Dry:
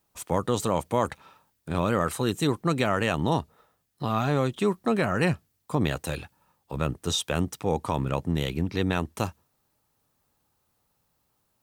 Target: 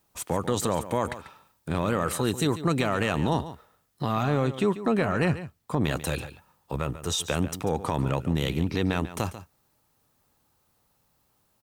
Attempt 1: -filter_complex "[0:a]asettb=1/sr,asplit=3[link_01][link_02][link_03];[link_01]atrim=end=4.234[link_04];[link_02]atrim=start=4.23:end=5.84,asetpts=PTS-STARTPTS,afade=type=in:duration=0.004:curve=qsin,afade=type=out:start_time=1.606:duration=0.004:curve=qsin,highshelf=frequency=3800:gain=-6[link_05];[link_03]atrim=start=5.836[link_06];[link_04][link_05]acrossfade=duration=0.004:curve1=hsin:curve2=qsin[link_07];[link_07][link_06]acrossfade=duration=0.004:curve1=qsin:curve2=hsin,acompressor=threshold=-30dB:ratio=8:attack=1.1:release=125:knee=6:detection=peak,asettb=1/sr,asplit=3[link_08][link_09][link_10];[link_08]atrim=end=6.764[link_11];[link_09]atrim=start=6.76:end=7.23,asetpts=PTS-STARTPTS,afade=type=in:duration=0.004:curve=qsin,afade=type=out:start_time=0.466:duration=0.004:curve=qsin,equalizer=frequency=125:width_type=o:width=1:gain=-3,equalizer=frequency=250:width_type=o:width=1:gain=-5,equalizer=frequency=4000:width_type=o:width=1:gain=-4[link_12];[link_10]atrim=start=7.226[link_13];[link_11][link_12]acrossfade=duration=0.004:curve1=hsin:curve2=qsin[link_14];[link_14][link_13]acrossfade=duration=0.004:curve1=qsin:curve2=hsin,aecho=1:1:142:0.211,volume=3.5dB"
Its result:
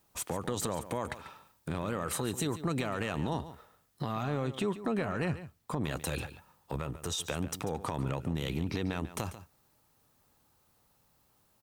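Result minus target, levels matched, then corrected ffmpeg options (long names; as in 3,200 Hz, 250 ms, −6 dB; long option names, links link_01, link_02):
downward compressor: peak gain reduction +8.5 dB
-filter_complex "[0:a]asettb=1/sr,asplit=3[link_01][link_02][link_03];[link_01]atrim=end=4.234[link_04];[link_02]atrim=start=4.23:end=5.84,asetpts=PTS-STARTPTS,afade=type=in:duration=0.004:curve=qsin,afade=type=out:start_time=1.606:duration=0.004:curve=qsin,highshelf=frequency=3800:gain=-6[link_05];[link_03]atrim=start=5.836[link_06];[link_04][link_05]acrossfade=duration=0.004:curve1=hsin:curve2=qsin[link_07];[link_07][link_06]acrossfade=duration=0.004:curve1=qsin:curve2=hsin,acompressor=threshold=-20dB:ratio=8:attack=1.1:release=125:knee=6:detection=peak,asettb=1/sr,asplit=3[link_08][link_09][link_10];[link_08]atrim=end=6.764[link_11];[link_09]atrim=start=6.76:end=7.23,asetpts=PTS-STARTPTS,afade=type=in:duration=0.004:curve=qsin,afade=type=out:start_time=0.466:duration=0.004:curve=qsin,equalizer=frequency=125:width_type=o:width=1:gain=-3,equalizer=frequency=250:width_type=o:width=1:gain=-5,equalizer=frequency=4000:width_type=o:width=1:gain=-4[link_12];[link_10]atrim=start=7.226[link_13];[link_11][link_12]acrossfade=duration=0.004:curve1=hsin:curve2=qsin[link_14];[link_14][link_13]acrossfade=duration=0.004:curve1=qsin:curve2=hsin,aecho=1:1:142:0.211,volume=3.5dB"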